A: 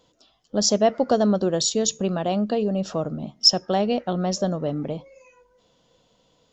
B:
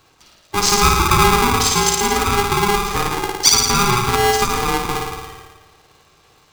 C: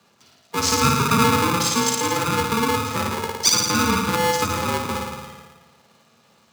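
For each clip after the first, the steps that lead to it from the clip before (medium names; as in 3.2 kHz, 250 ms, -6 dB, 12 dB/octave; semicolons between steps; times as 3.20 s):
in parallel at -1 dB: compression, threshold -29 dBFS, peak gain reduction 17.5 dB; on the sum: flutter echo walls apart 9.5 m, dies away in 1.3 s; polarity switched at an audio rate 610 Hz; trim +1 dB
frequency shift +72 Hz; small resonant body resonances 230/650 Hz, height 6 dB; trim -5 dB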